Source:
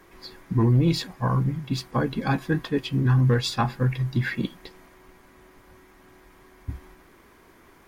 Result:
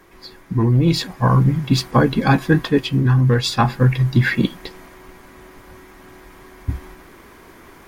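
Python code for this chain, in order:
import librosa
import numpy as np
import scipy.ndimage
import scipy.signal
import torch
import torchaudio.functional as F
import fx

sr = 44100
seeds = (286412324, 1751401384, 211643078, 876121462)

y = fx.rider(x, sr, range_db=10, speed_s=0.5)
y = F.gain(torch.from_numpy(y), 7.5).numpy()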